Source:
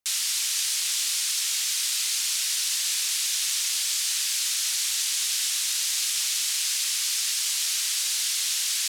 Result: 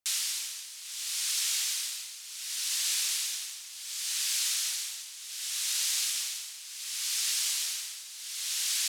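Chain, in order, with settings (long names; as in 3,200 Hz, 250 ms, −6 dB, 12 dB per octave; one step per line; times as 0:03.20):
amplitude tremolo 0.68 Hz, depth 83%
delay with a low-pass on its return 81 ms, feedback 80%, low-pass 790 Hz, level −8.5 dB
level −3 dB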